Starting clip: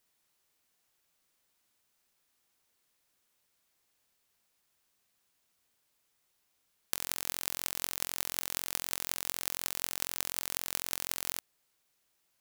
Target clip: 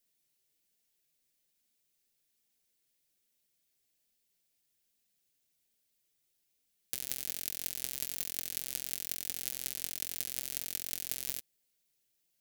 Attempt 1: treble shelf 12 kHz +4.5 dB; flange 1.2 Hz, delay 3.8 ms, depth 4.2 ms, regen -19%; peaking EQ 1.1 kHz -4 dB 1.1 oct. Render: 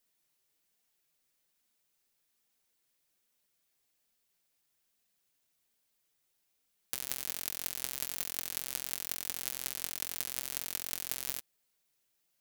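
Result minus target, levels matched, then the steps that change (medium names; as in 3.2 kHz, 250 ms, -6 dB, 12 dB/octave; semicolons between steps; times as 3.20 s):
1 kHz band +7.5 dB
change: peaking EQ 1.1 kHz -15 dB 1.1 oct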